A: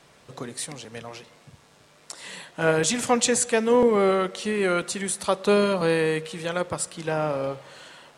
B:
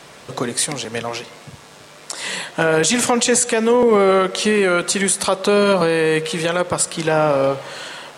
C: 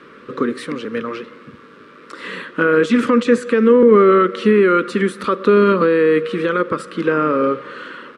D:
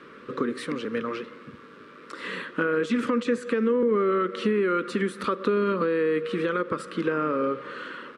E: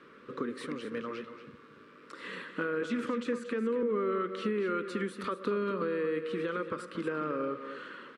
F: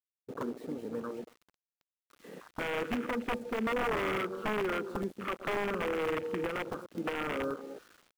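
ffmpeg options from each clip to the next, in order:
-filter_complex "[0:a]lowshelf=f=140:g=-7,asplit=2[a][b];[b]acompressor=threshold=-29dB:ratio=6,volume=2.5dB[c];[a][c]amix=inputs=2:normalize=0,alimiter=level_in=11.5dB:limit=-1dB:release=50:level=0:latency=1,volume=-5dB"
-af "firequalizer=gain_entry='entry(140,0);entry(220,14);entry(490,11);entry(720,-15);entry(1200,14);entry(1900,5);entry(6700,-16)':delay=0.05:min_phase=1,volume=-7.5dB"
-af "acompressor=threshold=-19dB:ratio=2.5,volume=-4.5dB"
-af "aecho=1:1:233:0.299,volume=-8dB"
-af "aeval=exprs='(mod(17.8*val(0)+1,2)-1)/17.8':c=same,acrusher=bits=6:mix=0:aa=0.000001,afwtdn=0.0141"

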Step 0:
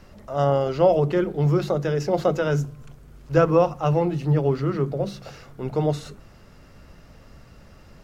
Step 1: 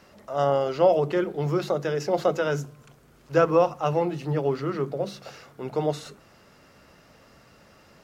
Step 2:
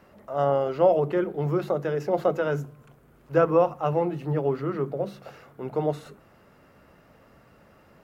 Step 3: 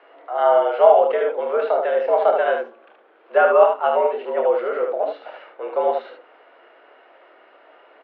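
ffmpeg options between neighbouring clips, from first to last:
-af "highpass=f=340:p=1"
-af "equalizer=f=5.5k:t=o:w=1.8:g=-12.5"
-af "highpass=f=300:t=q:w=0.5412,highpass=f=300:t=q:w=1.307,lowpass=f=3.5k:t=q:w=0.5176,lowpass=f=3.5k:t=q:w=0.7071,lowpass=f=3.5k:t=q:w=1.932,afreqshift=89,aecho=1:1:28|75:0.473|0.596,volume=5.5dB"

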